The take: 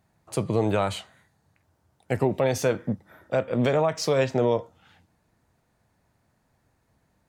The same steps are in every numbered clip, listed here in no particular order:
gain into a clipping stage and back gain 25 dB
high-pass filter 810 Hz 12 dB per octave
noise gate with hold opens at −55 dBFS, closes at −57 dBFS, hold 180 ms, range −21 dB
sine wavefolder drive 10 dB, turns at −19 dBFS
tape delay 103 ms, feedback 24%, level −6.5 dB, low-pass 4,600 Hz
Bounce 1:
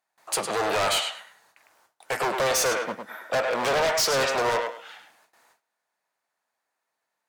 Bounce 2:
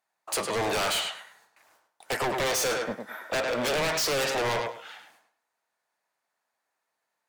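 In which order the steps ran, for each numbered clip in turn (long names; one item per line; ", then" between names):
gain into a clipping stage and back, then tape delay, then noise gate with hold, then high-pass filter, then sine wavefolder
high-pass filter, then noise gate with hold, then sine wavefolder, then tape delay, then gain into a clipping stage and back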